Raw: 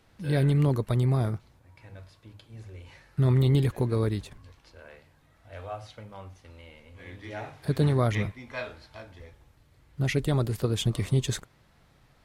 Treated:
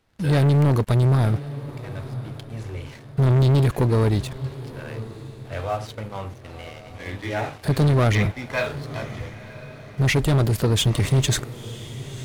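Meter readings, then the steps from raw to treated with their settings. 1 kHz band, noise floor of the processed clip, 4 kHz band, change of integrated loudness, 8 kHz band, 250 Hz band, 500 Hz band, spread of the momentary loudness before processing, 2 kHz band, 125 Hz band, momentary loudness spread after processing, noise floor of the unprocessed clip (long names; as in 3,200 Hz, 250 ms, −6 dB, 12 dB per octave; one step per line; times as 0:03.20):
+8.5 dB, −42 dBFS, +9.0 dB, +5.5 dB, can't be measured, +5.5 dB, +6.0 dB, 22 LU, +9.0 dB, +6.5 dB, 19 LU, −62 dBFS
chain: leveller curve on the samples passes 3
feedback delay with all-pass diffusion 1,006 ms, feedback 41%, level −15 dB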